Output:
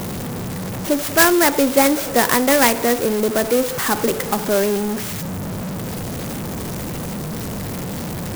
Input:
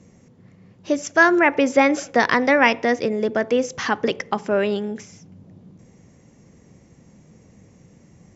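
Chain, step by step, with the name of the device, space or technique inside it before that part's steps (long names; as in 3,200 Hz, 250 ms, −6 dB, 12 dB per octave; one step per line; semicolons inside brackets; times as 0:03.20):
early CD player with a faulty converter (converter with a step at zero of −21 dBFS; converter with an unsteady clock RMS 0.083 ms)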